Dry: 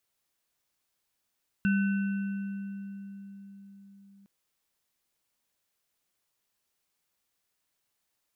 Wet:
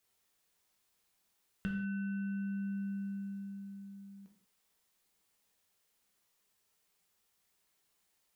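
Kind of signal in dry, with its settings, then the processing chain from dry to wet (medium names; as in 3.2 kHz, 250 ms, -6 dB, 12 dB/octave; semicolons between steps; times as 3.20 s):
sine partials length 2.61 s, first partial 198 Hz, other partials 1.51/2.7 kHz, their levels -8.5/-15 dB, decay 4.84 s, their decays 2.48/2.37 s, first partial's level -22 dB
compression 10:1, threshold -39 dBFS; gated-style reverb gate 210 ms falling, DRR 0.5 dB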